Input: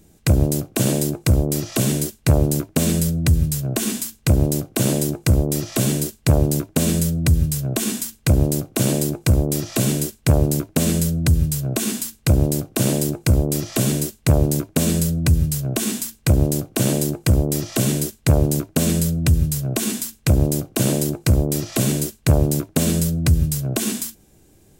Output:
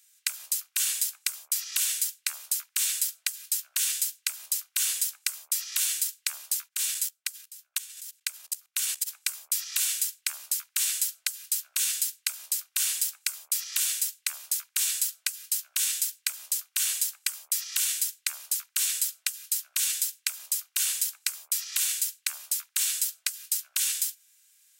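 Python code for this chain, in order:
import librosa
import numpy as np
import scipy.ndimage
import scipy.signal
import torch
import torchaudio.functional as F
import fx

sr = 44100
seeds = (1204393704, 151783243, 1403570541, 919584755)

y = fx.level_steps(x, sr, step_db=20, at=(6.67, 9.06), fade=0.02)
y = scipy.signal.sosfilt(scipy.signal.bessel(6, 2300.0, 'highpass', norm='mag', fs=sr, output='sos'), y)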